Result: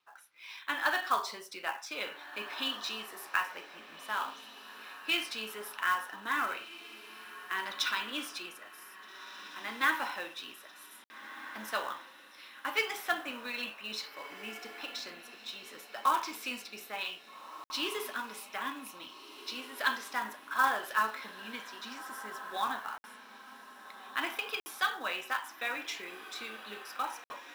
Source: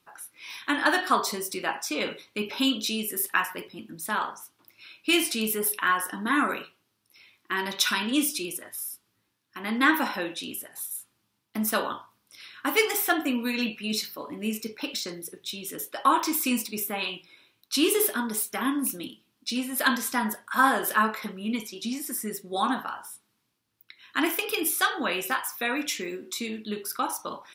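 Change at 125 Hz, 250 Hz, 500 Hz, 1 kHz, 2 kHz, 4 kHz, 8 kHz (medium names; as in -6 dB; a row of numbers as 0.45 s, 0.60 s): under -15 dB, -18.5 dB, -12.0 dB, -6.0 dB, -5.5 dB, -6.5 dB, -15.5 dB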